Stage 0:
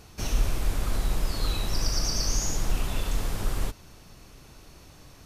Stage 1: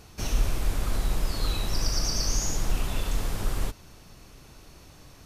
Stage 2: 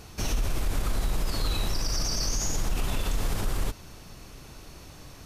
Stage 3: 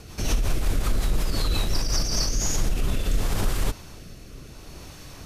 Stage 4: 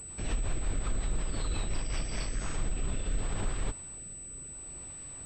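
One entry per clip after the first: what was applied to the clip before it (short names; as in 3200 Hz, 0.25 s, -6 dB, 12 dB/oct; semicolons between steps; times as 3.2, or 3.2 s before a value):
nothing audible
limiter -22.5 dBFS, peak gain reduction 10 dB; gain +4 dB
rotary speaker horn 5.5 Hz, later 0.7 Hz, at 1.84; gain +5.5 dB
pulse-width modulation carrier 8000 Hz; gain -8.5 dB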